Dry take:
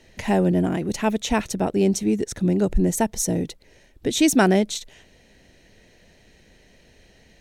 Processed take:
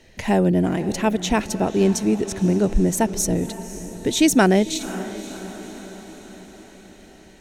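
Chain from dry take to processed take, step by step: diffused feedback echo 0.544 s, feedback 58%, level -14 dB; gain +1.5 dB

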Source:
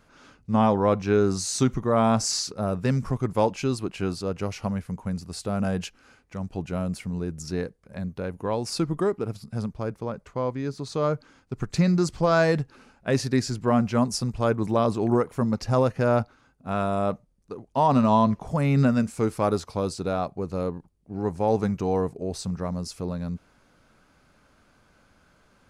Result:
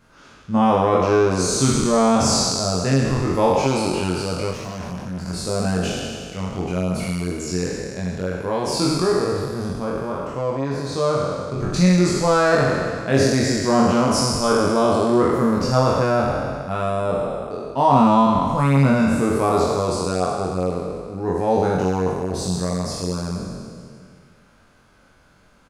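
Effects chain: spectral trails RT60 2.25 s; 4.51–5.26 tube stage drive 28 dB, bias 0.65; doubler 22 ms -2.5 dB

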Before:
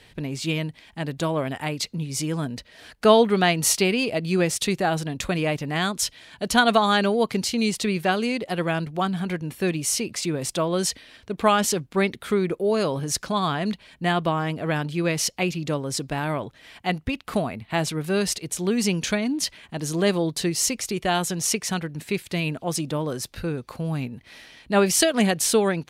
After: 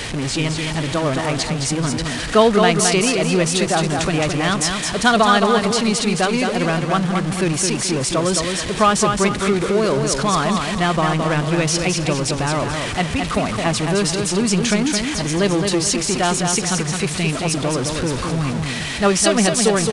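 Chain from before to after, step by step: zero-crossing step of -23 dBFS; tempo 1.3×; dynamic EQ 1200 Hz, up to +5 dB, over -42 dBFS, Q 5.9; on a send: feedback echo 0.216 s, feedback 37%, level -5 dB; on the sum: downsampling 22050 Hz; gain +1.5 dB

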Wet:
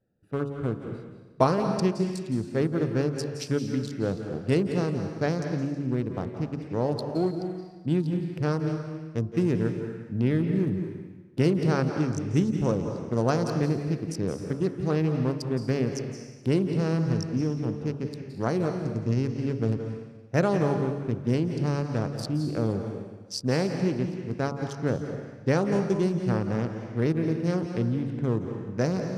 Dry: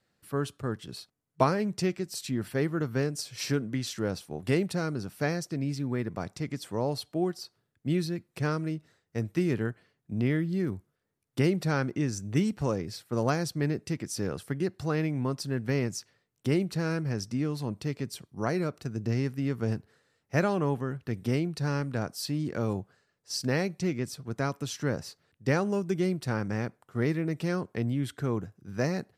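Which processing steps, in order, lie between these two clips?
Wiener smoothing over 41 samples; LPF 11000 Hz 12 dB/oct; bell 490 Hz +2 dB 0.39 oct; de-hum 70.07 Hz, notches 20; on a send at -6 dB: reverb RT60 1.2 s, pre-delay 0.161 s; on the sum: dynamic EQ 2100 Hz, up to -5 dB, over -53 dBFS, Q 1.6; gain +3.5 dB

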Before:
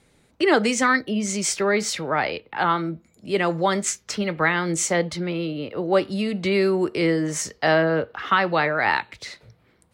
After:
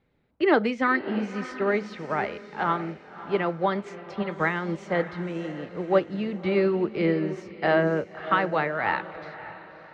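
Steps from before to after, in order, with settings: air absorption 330 m; diffused feedback echo 0.589 s, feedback 45%, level -9.5 dB; upward expander 1.5:1, over -33 dBFS

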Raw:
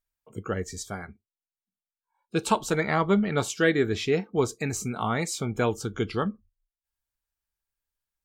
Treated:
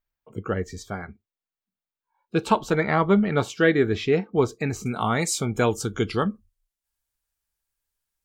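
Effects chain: bell 9700 Hz -13.5 dB 1.6 oct, from 4.86 s +4 dB; gain +3.5 dB

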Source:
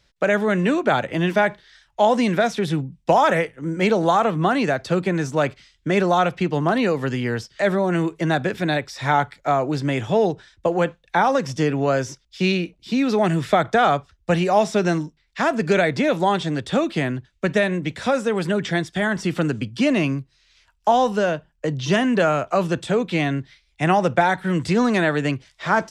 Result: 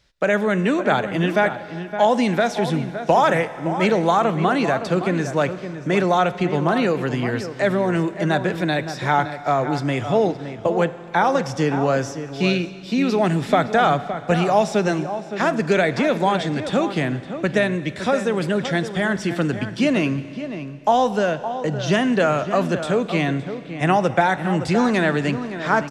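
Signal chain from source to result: outdoor echo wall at 97 m, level -10 dB; Schroeder reverb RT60 2.9 s, combs from 32 ms, DRR 14.5 dB

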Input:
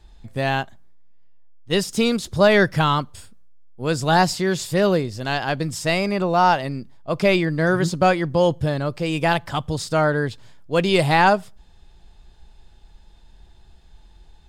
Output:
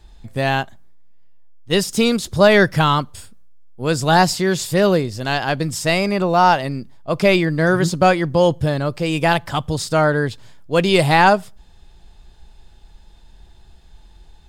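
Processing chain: high shelf 9300 Hz +4.5 dB; gain +3 dB

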